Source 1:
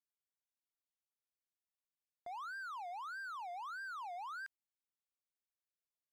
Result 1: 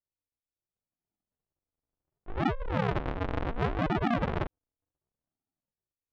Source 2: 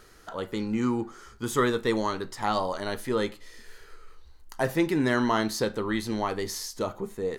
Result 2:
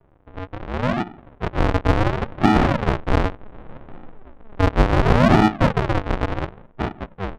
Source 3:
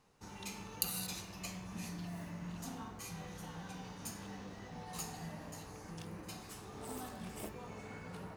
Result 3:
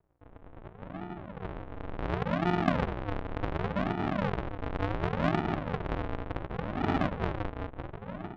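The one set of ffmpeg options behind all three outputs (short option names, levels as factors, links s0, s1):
-filter_complex "[0:a]dynaudnorm=f=440:g=7:m=5.62,aresample=8000,acrusher=samples=29:mix=1:aa=0.000001:lfo=1:lforange=29:lforate=0.69,aresample=44100,adynamicsmooth=sensitivity=2:basefreq=1300,asplit=2[s0][s1];[s1]highpass=f=720:p=1,volume=5.62,asoftclip=type=tanh:threshold=0.708[s2];[s0][s2]amix=inputs=2:normalize=0,lowpass=f=1600:p=1,volume=0.501,volume=1.33"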